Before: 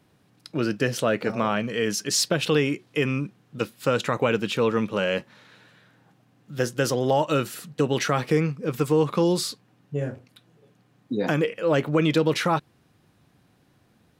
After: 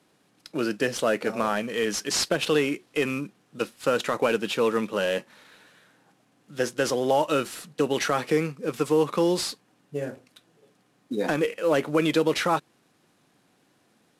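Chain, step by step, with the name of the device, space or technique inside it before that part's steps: early wireless headset (HPF 230 Hz 12 dB/oct; CVSD 64 kbps)

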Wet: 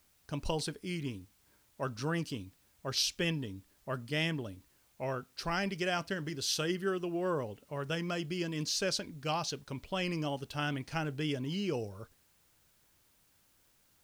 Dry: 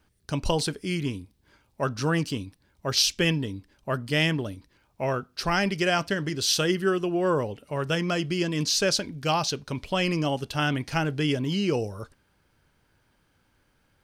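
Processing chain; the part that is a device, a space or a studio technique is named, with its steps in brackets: plain cassette with noise reduction switched in (mismatched tape noise reduction decoder only; wow and flutter 26 cents; white noise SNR 33 dB); gain -9 dB

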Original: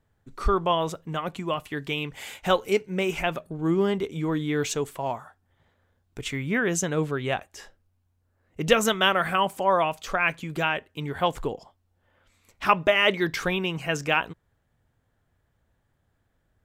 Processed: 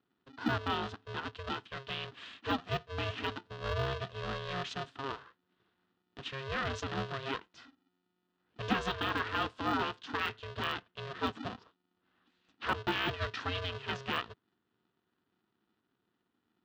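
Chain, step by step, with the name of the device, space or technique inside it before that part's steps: ring modulator pedal into a guitar cabinet (polarity switched at an audio rate 270 Hz; speaker cabinet 87–3700 Hz, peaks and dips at 160 Hz -9 dB, 360 Hz -4 dB, 570 Hz -9 dB, 820 Hz -7 dB, 2200 Hz -10 dB); de-esser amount 90%; high shelf 4700 Hz +9 dB; gain -6.5 dB

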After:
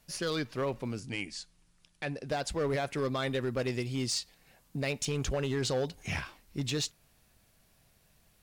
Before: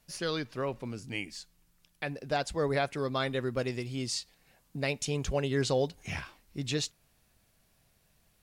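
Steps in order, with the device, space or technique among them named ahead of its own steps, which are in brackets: limiter into clipper (limiter -24 dBFS, peak gain reduction 7 dB; hard clip -28 dBFS, distortion -18 dB); 1–2.29 Chebyshev low-pass 10000 Hz, order 4; gain +2.5 dB

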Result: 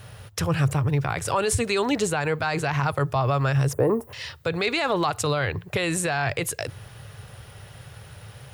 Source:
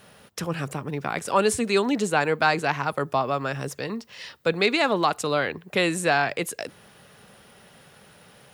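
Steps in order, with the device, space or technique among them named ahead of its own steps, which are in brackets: car stereo with a boomy subwoofer (resonant low shelf 150 Hz +11.5 dB, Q 3; limiter -17.5 dBFS, peak gain reduction 10.5 dB); 3.73–4.13 EQ curve 150 Hz 0 dB, 320 Hz +13 dB, 980 Hz +7 dB, 4600 Hz -29 dB, 10000 Hz +10 dB; gain +4 dB

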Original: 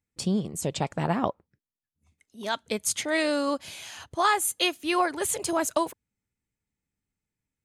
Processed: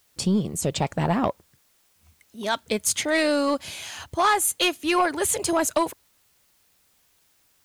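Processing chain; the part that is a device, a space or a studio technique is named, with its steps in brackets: open-reel tape (soft clip -17.5 dBFS, distortion -16 dB; bell 72 Hz +4 dB; white noise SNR 38 dB); gain +5 dB

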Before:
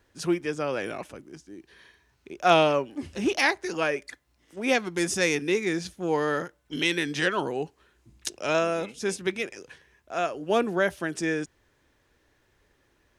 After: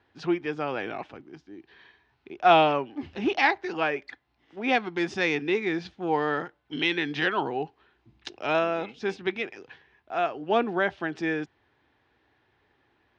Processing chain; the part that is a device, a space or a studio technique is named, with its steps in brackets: guitar cabinet (speaker cabinet 91–4000 Hz, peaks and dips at 180 Hz -4 dB, 550 Hz -6 dB, 790 Hz +7 dB)

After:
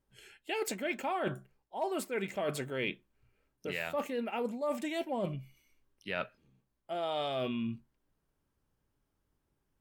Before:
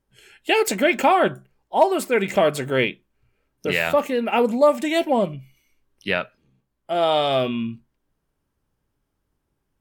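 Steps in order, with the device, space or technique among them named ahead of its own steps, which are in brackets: compression on the reversed sound (reverse; compressor 6:1, threshold -27 dBFS, peak gain reduction 16 dB; reverse); gain -5 dB

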